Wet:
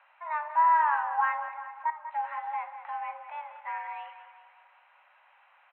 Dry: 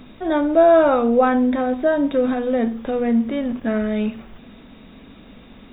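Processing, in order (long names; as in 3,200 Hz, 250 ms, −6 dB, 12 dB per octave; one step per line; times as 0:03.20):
0:01.48–0:02.14: output level in coarse steps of 16 dB
repeating echo 194 ms, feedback 49%, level −11.5 dB
single-sideband voice off tune +310 Hz 530–2,300 Hz
level −8.5 dB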